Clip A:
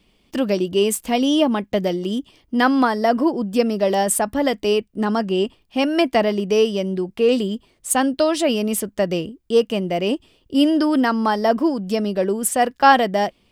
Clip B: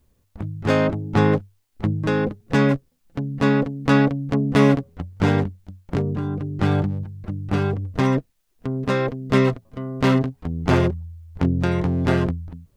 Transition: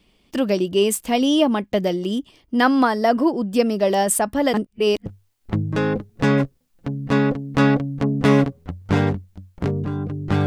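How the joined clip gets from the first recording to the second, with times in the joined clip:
clip A
4.54–5.06 s: reverse
5.06 s: go over to clip B from 1.37 s

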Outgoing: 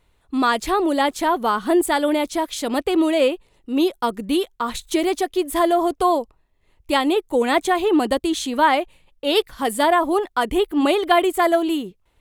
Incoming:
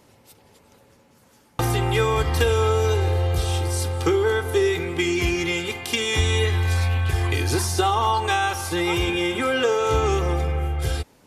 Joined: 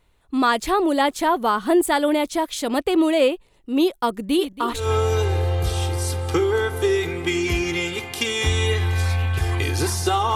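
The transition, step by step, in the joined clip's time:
outgoing
4.25–4.91 s: backward echo that repeats 139 ms, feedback 52%, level -9.5 dB
4.82 s: go over to incoming from 2.54 s, crossfade 0.18 s

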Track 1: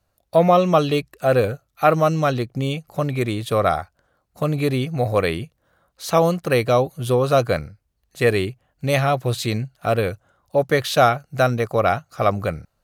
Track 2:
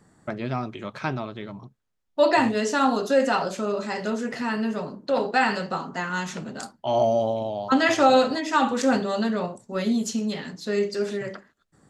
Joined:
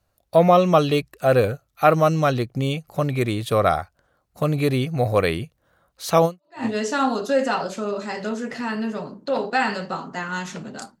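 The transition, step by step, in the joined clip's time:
track 1
6.45 s: go over to track 2 from 2.26 s, crossfade 0.40 s exponential

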